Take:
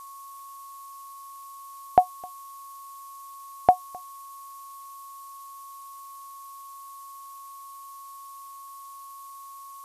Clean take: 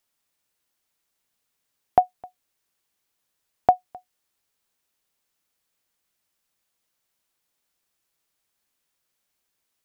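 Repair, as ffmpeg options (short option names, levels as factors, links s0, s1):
-af "adeclick=t=4,bandreject=f=1100:w=30,afftdn=nr=30:nf=-44"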